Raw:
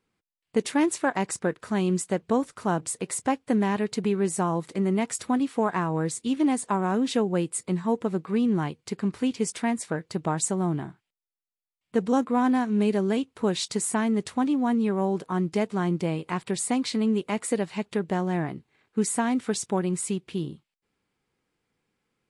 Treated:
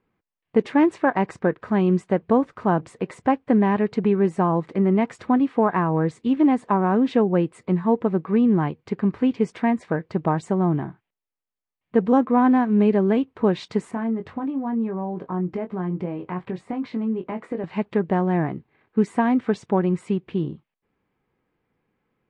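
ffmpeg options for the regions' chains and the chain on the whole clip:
ffmpeg -i in.wav -filter_complex "[0:a]asettb=1/sr,asplit=3[link_01][link_02][link_03];[link_01]atrim=end=13.914[link_04];[link_02]atrim=start=13.91:end=17.64,asetpts=PTS-STARTPTS,afade=type=in:duration=0.004:curve=qsin,afade=type=out:start_time=3.726:duration=0.004:curve=qsin,acompressor=threshold=-32dB:ratio=2.5:attack=3.2:release=140:knee=1:detection=peak,highshelf=frequency=3300:gain=-11,asplit=2[link_05][link_06];[link_06]adelay=22,volume=-7dB[link_07];[link_05][link_07]amix=inputs=2:normalize=0,atrim=end_sample=164493[link_08];[link_03]atrim=start=17.636[link_09];[link_04][link_08]acrossfade=duration=0.004:curve1=hsin:curve2=qsin[link_10];[link_10][link_09]acrossfade=duration=0.004:curve1=qsin:curve2=hsin,lowpass=1900,bandreject=frequency=1400:width=17,volume=5.5dB" out.wav

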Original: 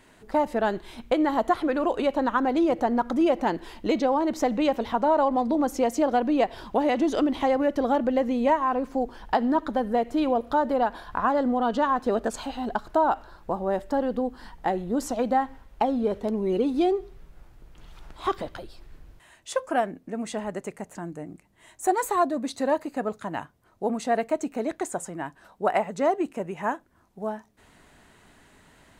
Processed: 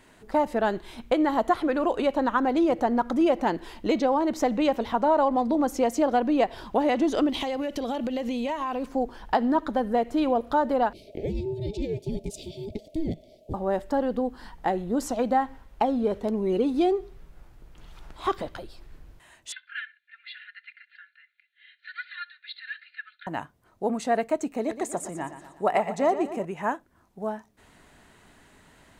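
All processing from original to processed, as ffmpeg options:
ffmpeg -i in.wav -filter_complex "[0:a]asettb=1/sr,asplit=3[link_01][link_02][link_03];[link_01]atrim=end=7.294[link_04];[link_02]atrim=start=7.29:end=8.86,asetpts=PTS-STARTPTS,afade=type=in:duration=0.004:curve=qsin,afade=type=out:start_time=1.566:duration=0.004:curve=qsin,highshelf=frequency=2100:width_type=q:width=1.5:gain=7.5,acompressor=threshold=-25dB:ratio=10:attack=3.2:release=140:knee=1:detection=peak[link_05];[link_03]atrim=start=8.856[link_06];[link_04][link_05]acrossfade=duration=0.004:curve1=hsin:curve2=qsin[link_07];[link_07][link_06]acrossfade=duration=0.004:curve1=qsin:curve2=hsin,asettb=1/sr,asplit=3[link_08][link_09][link_10];[link_08]atrim=end=10.934[link_11];[link_09]atrim=start=10.93:end=13.54,asetpts=PTS-STARTPTS,afade=type=in:duration=0.004:curve=qsin,afade=type=out:start_time=2.606:duration=0.004:curve=qsin,aeval=exprs='val(0)*sin(2*PI*630*n/s)':channel_layout=same,asuperstop=centerf=1300:order=8:qfactor=0.61[link_12];[link_10]atrim=start=13.536[link_13];[link_11][link_12]acrossfade=duration=0.004:curve1=hsin:curve2=qsin[link_14];[link_14][link_13]acrossfade=duration=0.004:curve1=qsin:curve2=hsin,asettb=1/sr,asplit=3[link_15][link_16][link_17];[link_15]atrim=end=19.524[link_18];[link_16]atrim=start=19.52:end=23.27,asetpts=PTS-STARTPTS,afade=type=in:duration=0.004:curve=qsin,afade=type=out:start_time=3.746:duration=0.004:curve=qsin,asuperpass=centerf=2500:order=20:qfactor=0.88,aecho=1:1:2.9:0.74,atrim=end_sample=165375,aecho=1:1:67|134:0.0708|0.0184,atrim=end_sample=165375[link_19];[link_17]atrim=start=23.266[link_20];[link_18][link_19]acrossfade=duration=0.004:curve1=hsin:curve2=qsin[link_21];[link_21][link_20]acrossfade=duration=0.004:curve1=qsin:curve2=hsin,asettb=1/sr,asplit=3[link_22][link_23][link_24];[link_22]atrim=end=24.514[link_25];[link_23]atrim=start=24.51:end=26.45,asetpts=PTS-STARTPTS,afade=type=in:duration=0.004:curve=qsin,afade=type=out:start_time=1.936:duration=0.004:curve=qsin,bandreject=frequency=1500:width=8.1,aecho=1:1:119|238|357|476|595|714:0.266|0.141|0.0747|0.0396|0.021|0.0111,atrim=end_sample=85554[link_26];[link_24]atrim=start=26.446[link_27];[link_25][link_26]acrossfade=duration=0.004:curve1=hsin:curve2=qsin[link_28];[link_28][link_27]acrossfade=duration=0.004:curve1=qsin:curve2=hsin" out.wav

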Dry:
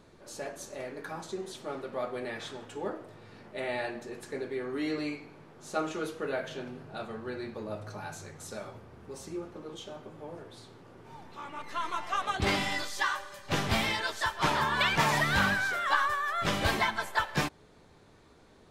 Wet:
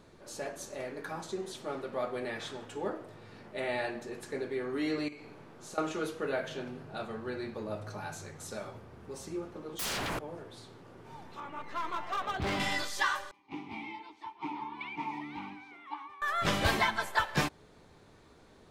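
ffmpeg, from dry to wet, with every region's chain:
ffmpeg -i in.wav -filter_complex "[0:a]asettb=1/sr,asplit=3[link_01][link_02][link_03];[link_01]atrim=end=5.084[link_04];[link_02]atrim=start=5.08:end=5.78,asetpts=PTS-STARTPTS,afade=type=in:duration=0.004:curve=qsin,afade=type=out:start_time=0.696:duration=0.004:curve=qsin,acompressor=threshold=-43dB:ratio=10:attack=3.2:release=140:knee=1:detection=peak,asplit=2[link_05][link_06];[link_06]adelay=43,volume=-6.5dB[link_07];[link_05][link_07]amix=inputs=2:normalize=0,atrim=end_sample=30870[link_08];[link_03]atrim=start=5.776[link_09];[link_04][link_08]acrossfade=duration=0.004:curve1=hsin:curve2=qsin[link_10];[link_10][link_09]acrossfade=duration=0.004:curve1=qsin:curve2=hsin,asettb=1/sr,asplit=3[link_11][link_12][link_13];[link_11]atrim=end=9.794[link_14];[link_12]atrim=start=9.79:end=10.19,asetpts=PTS-STARTPTS,afade=type=in:duration=0.004:curve=qsin,afade=type=out:start_time=0.396:duration=0.004:curve=qsin,highshelf=frequency=9000:gain=10,aeval=exprs='0.0266*sin(PI/2*10*val(0)/0.0266)':channel_layout=same[link_15];[link_13]atrim=start=10.186[link_16];[link_14][link_15]acrossfade=duration=0.004:curve1=hsin:curve2=qsin[link_17];[link_17][link_16]acrossfade=duration=0.004:curve1=qsin:curve2=hsin,asettb=1/sr,asplit=3[link_18][link_19][link_20];[link_18]atrim=end=11.404[link_21];[link_19]atrim=start=11.4:end=12.6,asetpts=PTS-STARTPTS,afade=type=in:duration=0.004:curve=qsin,afade=type=out:start_time=1.196:duration=0.004:curve=qsin,acrusher=bits=6:mode=log:mix=0:aa=0.000001,aemphasis=mode=reproduction:type=75kf,asoftclip=type=hard:threshold=-29dB[link_22];[link_20]atrim=start=12.596[link_23];[link_21][link_22]acrossfade=duration=0.004:curve1=hsin:curve2=qsin[link_24];[link_24][link_23]acrossfade=duration=0.004:curve1=qsin:curve2=hsin,asettb=1/sr,asplit=3[link_25][link_26][link_27];[link_25]atrim=end=13.314[link_28];[link_26]atrim=start=13.31:end=16.22,asetpts=PTS-STARTPTS,afade=type=in:duration=0.004:curve=qsin,afade=type=out:start_time=2.906:duration=0.004:curve=qsin,asplit=3[link_29][link_30][link_31];[link_29]bandpass=frequency=300:width_type=q:width=8,volume=0dB[link_32];[link_30]bandpass=frequency=870:width_type=q:width=8,volume=-6dB[link_33];[link_31]bandpass=frequency=2240:width_type=q:width=8,volume=-9dB[link_34];[link_32][link_33][link_34]amix=inputs=3:normalize=0,bandreject=frequency=7300:width=11[link_35];[link_27]atrim=start=16.216[link_36];[link_28][link_35]acrossfade=duration=0.004:curve1=hsin:curve2=qsin[link_37];[link_37][link_36]acrossfade=duration=0.004:curve1=qsin:curve2=hsin" out.wav

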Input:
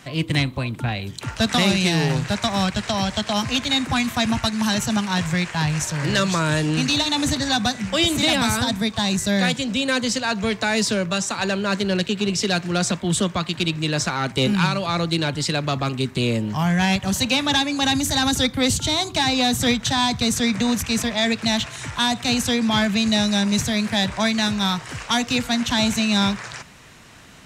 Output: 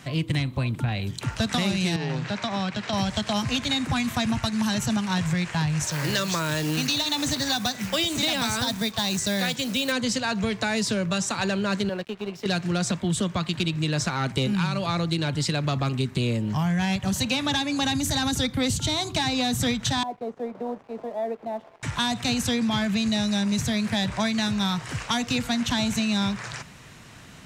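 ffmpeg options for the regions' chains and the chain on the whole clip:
ffmpeg -i in.wav -filter_complex "[0:a]asettb=1/sr,asplit=3[link_01][link_02][link_03];[link_01]atrim=end=1.964[link_04];[link_02]atrim=start=1.96:end=2.93,asetpts=PTS-STARTPTS,afade=type=in:duration=0.004:curve=qsin,afade=type=out:start_time=0.966:duration=0.004:curve=qsin,acompressor=threshold=-24dB:ratio=2:attack=3.2:release=140:knee=1:detection=peak,highpass=180,lowpass=4800[link_05];[link_03]atrim=start=2.926[link_06];[link_04][link_05]acrossfade=duration=0.004:curve1=hsin:curve2=qsin[link_07];[link_07][link_06]acrossfade=duration=0.004:curve1=qsin:curve2=hsin,asettb=1/sr,asplit=3[link_08][link_09][link_10];[link_08]atrim=end=5.864[link_11];[link_09]atrim=start=5.86:end=9.92,asetpts=PTS-STARTPTS,afade=type=in:duration=0.004:curve=qsin,afade=type=out:start_time=4.056:duration=0.004:curve=qsin,lowpass=6100,acrusher=bits=5:mode=log:mix=0:aa=0.000001,bass=frequency=250:gain=-7,treble=frequency=4000:gain=7[link_12];[link_10]atrim=start=9.916[link_13];[link_11][link_12]acrossfade=duration=0.004:curve1=hsin:curve2=qsin[link_14];[link_14][link_13]acrossfade=duration=0.004:curve1=qsin:curve2=hsin,asettb=1/sr,asplit=3[link_15][link_16][link_17];[link_15]atrim=end=11.894[link_18];[link_16]atrim=start=11.89:end=12.46,asetpts=PTS-STARTPTS,afade=type=in:duration=0.004:curve=qsin,afade=type=out:start_time=0.566:duration=0.004:curve=qsin,bandpass=frequency=780:width_type=q:width=1,aeval=exprs='sgn(val(0))*max(abs(val(0))-0.00596,0)':channel_layout=same[link_19];[link_17]atrim=start=12.456[link_20];[link_18][link_19]acrossfade=duration=0.004:curve1=hsin:curve2=qsin[link_21];[link_21][link_20]acrossfade=duration=0.004:curve1=qsin:curve2=hsin,asettb=1/sr,asplit=3[link_22][link_23][link_24];[link_22]atrim=end=20.034[link_25];[link_23]atrim=start=20.03:end=21.83,asetpts=PTS-STARTPTS,afade=type=in:duration=0.004:curve=qsin,afade=type=out:start_time=1.796:duration=0.004:curve=qsin,asuperpass=centerf=560:order=4:qfactor=1.2,aeval=exprs='sgn(val(0))*max(abs(val(0))-0.00266,0)':channel_layout=same[link_26];[link_24]atrim=start=21.826[link_27];[link_25][link_26]acrossfade=duration=0.004:curve1=hsin:curve2=qsin[link_28];[link_28][link_27]acrossfade=duration=0.004:curve1=qsin:curve2=hsin,equalizer=frequency=130:width=1:gain=5,acompressor=threshold=-20dB:ratio=6,volume=-1.5dB" out.wav

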